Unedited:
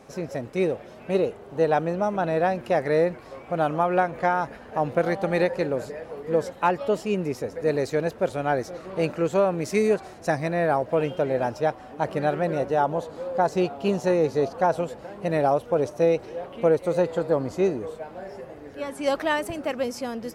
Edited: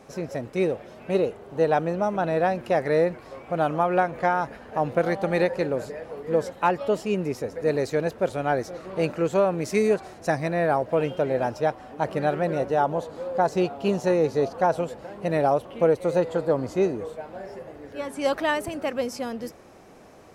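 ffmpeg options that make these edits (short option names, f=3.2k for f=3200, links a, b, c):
-filter_complex "[0:a]asplit=2[a][b];[a]atrim=end=15.652[c];[b]atrim=start=16.468[d];[c][d]acrossfade=d=0.004:c1=hsin:c2=hsin"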